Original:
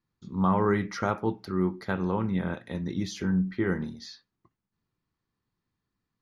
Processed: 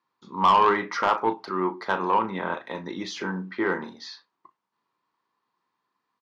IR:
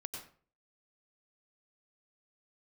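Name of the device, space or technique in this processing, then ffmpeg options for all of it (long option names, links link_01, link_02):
intercom: -filter_complex "[0:a]highpass=400,lowpass=4800,equalizer=frequency=1000:width_type=o:width=0.48:gain=11.5,asoftclip=type=tanh:threshold=-18dB,asplit=2[link_01][link_02];[link_02]adelay=36,volume=-12dB[link_03];[link_01][link_03]amix=inputs=2:normalize=0,volume=6dB"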